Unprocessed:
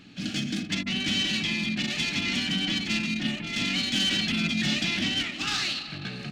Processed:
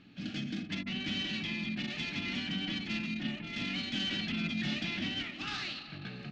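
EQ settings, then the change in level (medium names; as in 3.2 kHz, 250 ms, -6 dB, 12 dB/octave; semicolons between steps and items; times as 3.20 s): distance through air 160 m; -6.5 dB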